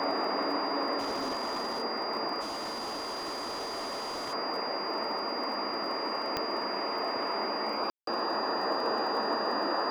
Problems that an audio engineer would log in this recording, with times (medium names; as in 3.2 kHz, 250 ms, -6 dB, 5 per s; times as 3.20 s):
crackle 17 per s -38 dBFS
whine 4.8 kHz -37 dBFS
0.98–1.83 s: clipped -29 dBFS
2.40–4.34 s: clipped -33 dBFS
6.37 s: pop -15 dBFS
7.90–8.07 s: dropout 173 ms